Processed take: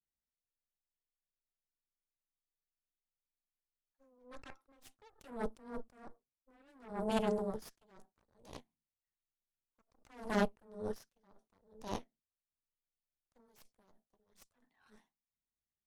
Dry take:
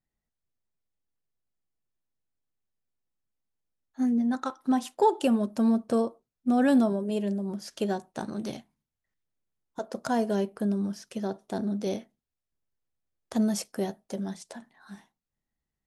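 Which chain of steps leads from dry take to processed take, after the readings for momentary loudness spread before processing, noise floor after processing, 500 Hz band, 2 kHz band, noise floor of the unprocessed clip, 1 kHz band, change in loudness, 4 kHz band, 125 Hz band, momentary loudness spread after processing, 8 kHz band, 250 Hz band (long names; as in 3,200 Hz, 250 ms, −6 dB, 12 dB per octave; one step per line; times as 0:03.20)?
13 LU, below −85 dBFS, −12.0 dB, −8.0 dB, below −85 dBFS, −13.0 dB, −11.0 dB, −10.5 dB, −12.5 dB, 23 LU, −16.0 dB, −18.0 dB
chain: frequency shifter +14 Hz
harmonic generator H 3 −12 dB, 5 −38 dB, 7 −33 dB, 8 −16 dB, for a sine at −11.5 dBFS
level that may rise only so fast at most 120 dB per second
level +1 dB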